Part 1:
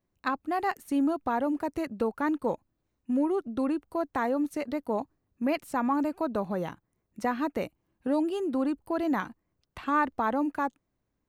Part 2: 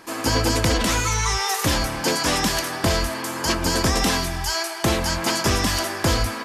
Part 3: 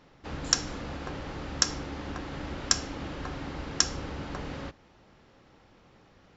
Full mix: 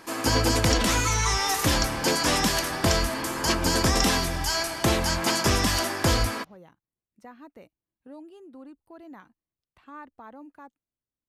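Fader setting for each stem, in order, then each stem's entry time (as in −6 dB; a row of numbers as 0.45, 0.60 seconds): −17.5, −2.0, −6.5 decibels; 0.00, 0.00, 0.20 seconds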